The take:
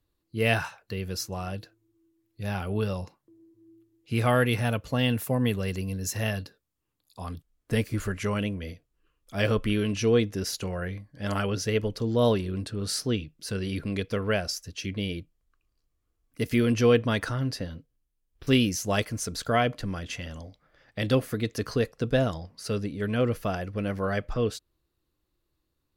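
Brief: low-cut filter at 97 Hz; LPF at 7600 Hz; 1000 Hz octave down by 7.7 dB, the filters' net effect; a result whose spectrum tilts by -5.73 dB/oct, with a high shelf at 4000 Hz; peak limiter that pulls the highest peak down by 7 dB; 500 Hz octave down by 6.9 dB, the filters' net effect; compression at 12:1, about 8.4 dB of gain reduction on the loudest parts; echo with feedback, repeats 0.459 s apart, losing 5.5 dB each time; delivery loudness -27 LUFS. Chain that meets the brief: HPF 97 Hz; LPF 7600 Hz; bell 500 Hz -6 dB; bell 1000 Hz -8.5 dB; high shelf 4000 Hz -7.5 dB; compressor 12:1, threshold -28 dBFS; limiter -24.5 dBFS; feedback echo 0.459 s, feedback 53%, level -5.5 dB; gain +9.5 dB

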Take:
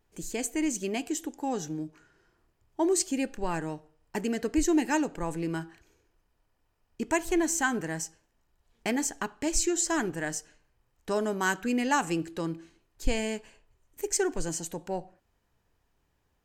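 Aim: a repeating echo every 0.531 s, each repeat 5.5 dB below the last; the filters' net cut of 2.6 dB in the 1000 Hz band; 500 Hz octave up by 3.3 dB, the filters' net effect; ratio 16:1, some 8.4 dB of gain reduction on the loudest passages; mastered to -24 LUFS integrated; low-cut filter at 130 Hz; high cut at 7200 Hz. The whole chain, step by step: HPF 130 Hz; LPF 7200 Hz; bell 500 Hz +6 dB; bell 1000 Hz -5.5 dB; compressor 16:1, threshold -27 dBFS; feedback echo 0.531 s, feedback 53%, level -5.5 dB; gain +9.5 dB

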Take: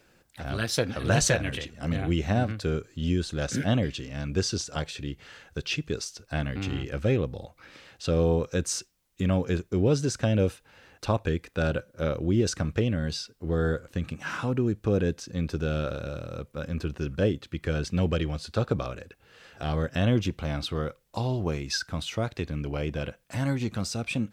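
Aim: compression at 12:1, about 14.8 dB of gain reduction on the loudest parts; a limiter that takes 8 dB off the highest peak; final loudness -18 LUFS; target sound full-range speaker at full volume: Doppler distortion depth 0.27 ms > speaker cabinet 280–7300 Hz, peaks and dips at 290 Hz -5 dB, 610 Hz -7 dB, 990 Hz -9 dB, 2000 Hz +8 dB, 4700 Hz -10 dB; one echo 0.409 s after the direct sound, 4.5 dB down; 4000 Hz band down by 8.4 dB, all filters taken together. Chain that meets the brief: bell 4000 Hz -8 dB; compressor 12:1, threshold -34 dBFS; limiter -30 dBFS; echo 0.409 s -4.5 dB; Doppler distortion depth 0.27 ms; speaker cabinet 280–7300 Hz, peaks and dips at 290 Hz -5 dB, 610 Hz -7 dB, 990 Hz -9 dB, 2000 Hz +8 dB, 4700 Hz -10 dB; gain +27.5 dB

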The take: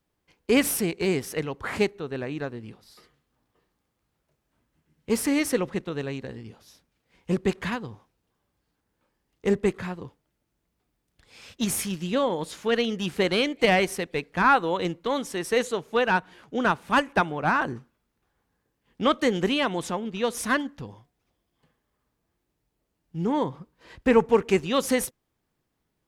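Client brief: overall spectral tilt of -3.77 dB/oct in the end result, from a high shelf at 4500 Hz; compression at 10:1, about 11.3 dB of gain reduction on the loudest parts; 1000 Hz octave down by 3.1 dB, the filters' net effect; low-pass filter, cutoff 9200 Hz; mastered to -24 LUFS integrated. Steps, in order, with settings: LPF 9200 Hz; bell 1000 Hz -4.5 dB; high shelf 4500 Hz +8.5 dB; compressor 10:1, threshold -26 dBFS; gain +8 dB

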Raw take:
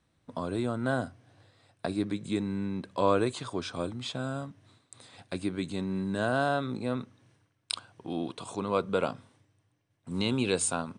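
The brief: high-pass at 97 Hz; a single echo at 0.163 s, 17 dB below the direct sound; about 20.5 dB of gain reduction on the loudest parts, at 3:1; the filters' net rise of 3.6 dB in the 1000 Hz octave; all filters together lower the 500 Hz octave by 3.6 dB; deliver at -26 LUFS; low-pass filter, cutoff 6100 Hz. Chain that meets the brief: HPF 97 Hz; LPF 6100 Hz; bell 500 Hz -6.5 dB; bell 1000 Hz +6.5 dB; compressor 3:1, threshold -48 dBFS; echo 0.163 s -17 dB; gain +21.5 dB

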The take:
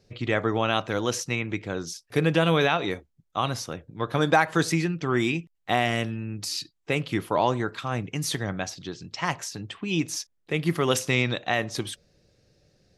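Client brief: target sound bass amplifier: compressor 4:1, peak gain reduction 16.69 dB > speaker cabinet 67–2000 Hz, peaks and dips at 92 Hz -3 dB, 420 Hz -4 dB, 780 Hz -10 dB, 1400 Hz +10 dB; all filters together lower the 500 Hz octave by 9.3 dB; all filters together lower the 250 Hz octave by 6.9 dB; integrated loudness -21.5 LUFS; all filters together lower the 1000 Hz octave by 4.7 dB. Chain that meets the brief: bell 250 Hz -8 dB; bell 500 Hz -4 dB; bell 1000 Hz -7 dB; compressor 4:1, threshold -40 dBFS; speaker cabinet 67–2000 Hz, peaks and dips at 92 Hz -3 dB, 420 Hz -4 dB, 780 Hz -10 dB, 1400 Hz +10 dB; gain +22.5 dB

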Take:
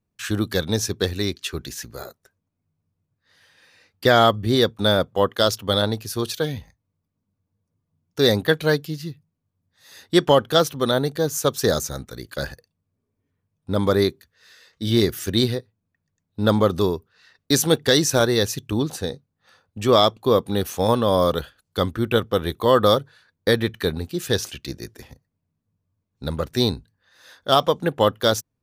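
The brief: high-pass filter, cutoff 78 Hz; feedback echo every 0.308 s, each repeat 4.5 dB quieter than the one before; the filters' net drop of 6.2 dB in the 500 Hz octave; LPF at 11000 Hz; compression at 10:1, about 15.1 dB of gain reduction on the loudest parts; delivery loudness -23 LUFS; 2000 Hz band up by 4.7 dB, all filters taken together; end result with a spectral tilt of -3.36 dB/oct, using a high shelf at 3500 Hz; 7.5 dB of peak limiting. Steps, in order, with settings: HPF 78 Hz; LPF 11000 Hz; bell 500 Hz -8 dB; bell 2000 Hz +5.5 dB; high shelf 3500 Hz +5 dB; compressor 10:1, threshold -27 dBFS; limiter -19.5 dBFS; feedback echo 0.308 s, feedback 60%, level -4.5 dB; gain +9.5 dB

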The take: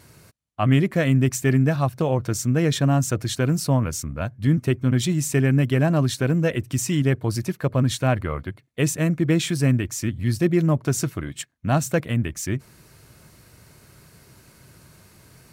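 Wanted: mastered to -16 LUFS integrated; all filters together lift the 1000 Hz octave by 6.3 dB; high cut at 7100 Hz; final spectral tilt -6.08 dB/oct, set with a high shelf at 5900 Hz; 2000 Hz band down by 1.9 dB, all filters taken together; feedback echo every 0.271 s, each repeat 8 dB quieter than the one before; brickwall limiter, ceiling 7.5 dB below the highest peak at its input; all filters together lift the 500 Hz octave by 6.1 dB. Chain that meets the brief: LPF 7100 Hz; bell 500 Hz +6 dB; bell 1000 Hz +7.5 dB; bell 2000 Hz -6 dB; high shelf 5900 Hz +5.5 dB; limiter -11.5 dBFS; feedback echo 0.271 s, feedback 40%, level -8 dB; gain +5.5 dB

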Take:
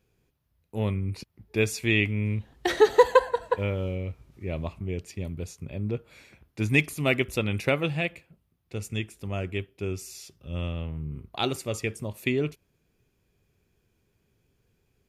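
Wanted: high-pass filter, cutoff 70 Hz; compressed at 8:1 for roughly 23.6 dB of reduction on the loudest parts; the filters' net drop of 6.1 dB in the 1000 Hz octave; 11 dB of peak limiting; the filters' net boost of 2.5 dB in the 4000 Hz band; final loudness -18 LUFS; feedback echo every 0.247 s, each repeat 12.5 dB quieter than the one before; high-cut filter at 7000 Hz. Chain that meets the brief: HPF 70 Hz; LPF 7000 Hz; bell 1000 Hz -7 dB; bell 4000 Hz +4 dB; compressor 8:1, threshold -39 dBFS; limiter -33.5 dBFS; feedback echo 0.247 s, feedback 24%, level -12.5 dB; gain +28 dB

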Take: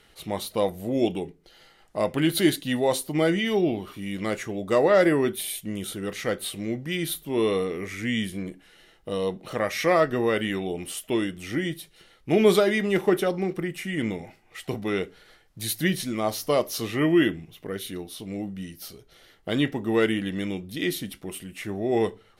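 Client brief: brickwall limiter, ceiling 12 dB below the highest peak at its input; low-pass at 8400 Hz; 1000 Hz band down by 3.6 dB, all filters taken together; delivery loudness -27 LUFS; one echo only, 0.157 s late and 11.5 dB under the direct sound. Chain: LPF 8400 Hz; bell 1000 Hz -5 dB; limiter -19 dBFS; echo 0.157 s -11.5 dB; gain +3 dB

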